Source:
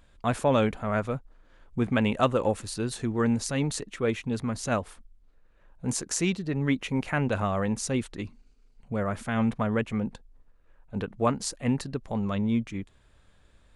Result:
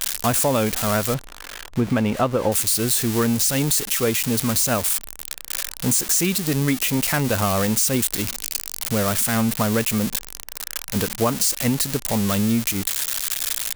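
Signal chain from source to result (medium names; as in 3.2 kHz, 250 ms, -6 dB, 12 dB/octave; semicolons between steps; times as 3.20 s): zero-crossing glitches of -18 dBFS; 1.14–2.52 s: low-pass 1.6 kHz 6 dB/octave; compression, threshold -25 dBFS, peak gain reduction 7.5 dB; trim +9 dB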